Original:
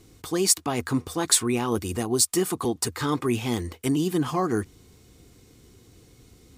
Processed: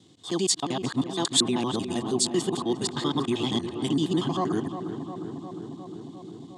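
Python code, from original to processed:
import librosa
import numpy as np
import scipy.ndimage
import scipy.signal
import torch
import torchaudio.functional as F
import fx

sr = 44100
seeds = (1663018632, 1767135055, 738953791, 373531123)

y = fx.local_reverse(x, sr, ms=78.0)
y = fx.cabinet(y, sr, low_hz=130.0, low_slope=24, high_hz=7700.0, hz=(470.0, 1400.0, 2300.0, 3400.0, 5700.0), db=(-8, -9, -10, 10, -6))
y = fx.echo_filtered(y, sr, ms=355, feedback_pct=80, hz=1800.0, wet_db=-9.0)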